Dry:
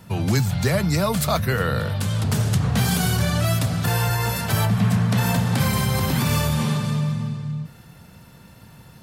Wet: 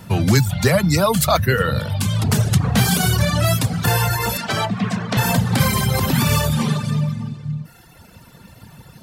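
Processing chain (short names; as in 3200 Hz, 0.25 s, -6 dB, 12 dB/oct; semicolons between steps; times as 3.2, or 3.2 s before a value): reverb removal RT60 1.4 s; 4.37–5.17 three-band isolator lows -15 dB, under 200 Hz, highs -22 dB, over 7300 Hz; gain +6.5 dB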